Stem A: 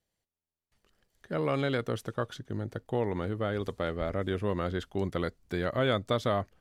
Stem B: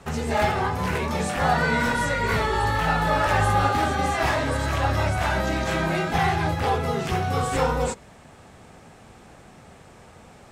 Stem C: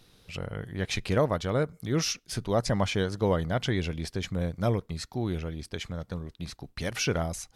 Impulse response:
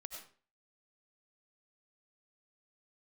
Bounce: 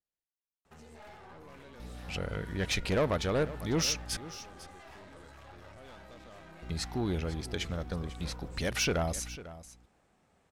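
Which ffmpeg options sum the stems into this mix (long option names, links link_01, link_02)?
-filter_complex "[0:a]volume=-14.5dB[link_01];[1:a]adelay=650,volume=-19dB[link_02];[2:a]aeval=exprs='val(0)+0.00631*(sin(2*PI*60*n/s)+sin(2*PI*2*60*n/s)/2+sin(2*PI*3*60*n/s)/3+sin(2*PI*4*60*n/s)/4+sin(2*PI*5*60*n/s)/5)':channel_layout=same,asoftclip=type=tanh:threshold=-24dB,adelay=1800,volume=2dB,asplit=3[link_03][link_04][link_05];[link_03]atrim=end=4.17,asetpts=PTS-STARTPTS,afade=type=out:start_time=4.166:duration=0.004:curve=hsin[link_06];[link_04]atrim=start=4.17:end=6.62,asetpts=PTS-STARTPTS,volume=0[link_07];[link_05]atrim=start=6.62,asetpts=PTS-STARTPTS,afade=type=in:duration=0.004:curve=hsin[link_08];[link_06][link_07][link_08]concat=n=3:v=0:a=1,asplit=2[link_09][link_10];[link_10]volume=-16dB[link_11];[link_01][link_02]amix=inputs=2:normalize=0,aeval=exprs='(tanh(100*val(0)+0.5)-tanh(0.5))/100':channel_layout=same,alimiter=level_in=19dB:limit=-24dB:level=0:latency=1:release=107,volume=-19dB,volume=0dB[link_12];[link_11]aecho=0:1:498:1[link_13];[link_09][link_12][link_13]amix=inputs=3:normalize=0,equalizer=frequency=120:width=1.8:gain=-4.5"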